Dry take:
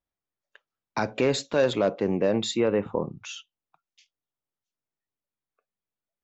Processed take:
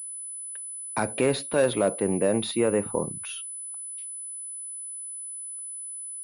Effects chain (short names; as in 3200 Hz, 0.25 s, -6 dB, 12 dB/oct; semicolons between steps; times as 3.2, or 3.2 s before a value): pulse-width modulation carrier 10000 Hz